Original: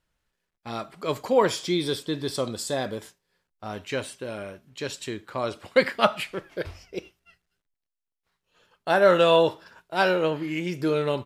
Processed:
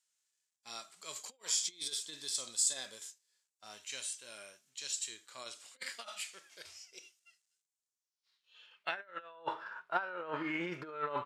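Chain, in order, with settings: harmonic-percussive split percussive -10 dB; compressor with a negative ratio -30 dBFS, ratio -0.5; band-pass sweep 7.3 kHz -> 1.3 kHz, 7.87–9.38 s; trim +7.5 dB

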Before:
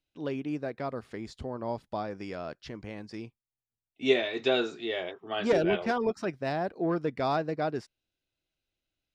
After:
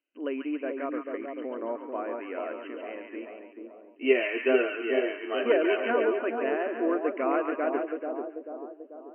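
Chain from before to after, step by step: brick-wall FIR band-pass 240–3100 Hz; peaking EQ 820 Hz -12 dB 0.22 oct; two-band feedback delay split 980 Hz, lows 439 ms, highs 140 ms, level -4 dB; trim +2 dB

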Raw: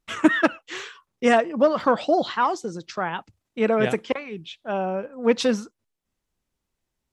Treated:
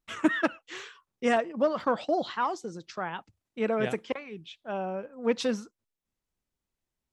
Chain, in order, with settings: 1.36–2.19 s: gate -29 dBFS, range -7 dB; trim -7 dB

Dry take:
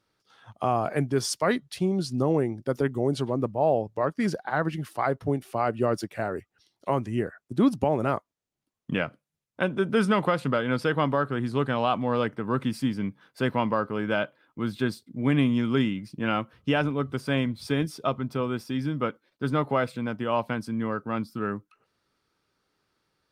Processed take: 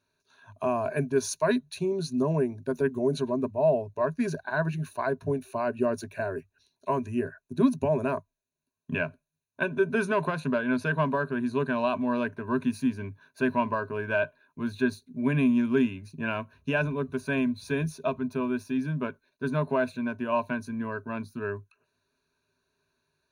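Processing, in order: rippled EQ curve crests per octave 1.5, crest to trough 16 dB; trim -5 dB

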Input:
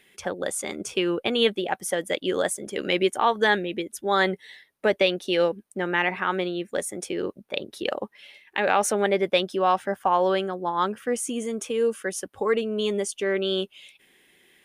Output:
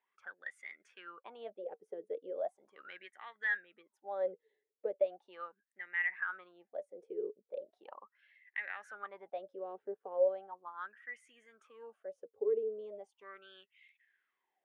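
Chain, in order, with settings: wah-wah 0.38 Hz 420–2000 Hz, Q 14; trim -2.5 dB

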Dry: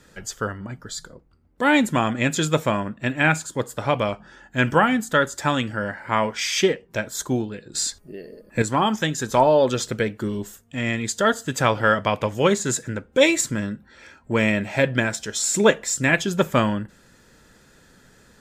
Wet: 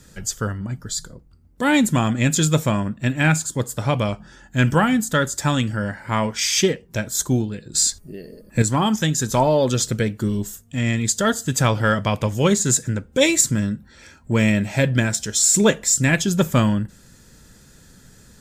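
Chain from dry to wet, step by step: tone controls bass +10 dB, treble +10 dB; in parallel at -12 dB: saturation -10.5 dBFS, distortion -14 dB; on the sum: trim -3.5 dB

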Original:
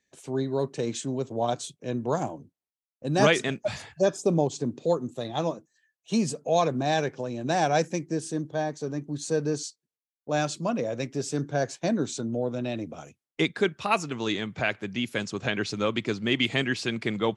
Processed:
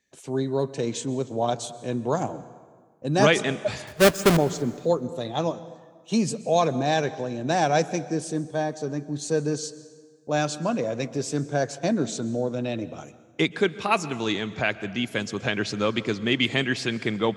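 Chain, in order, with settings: 3.87–4.37 s: square wave that keeps the level; plate-style reverb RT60 1.6 s, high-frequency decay 0.7×, pre-delay 110 ms, DRR 16 dB; trim +2 dB

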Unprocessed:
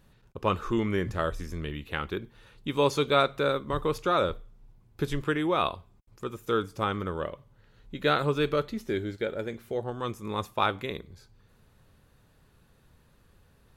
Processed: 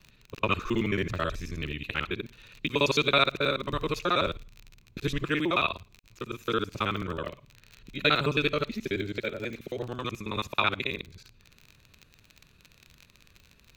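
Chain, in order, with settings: time reversed locally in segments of 54 ms; crackle 38 per s -37 dBFS; graphic EQ with 31 bands 500 Hz -4 dB, 800 Hz -8 dB, 2.5 kHz +12 dB, 4 kHz +8 dB, 6.3 kHz +4 dB, 10 kHz -8 dB

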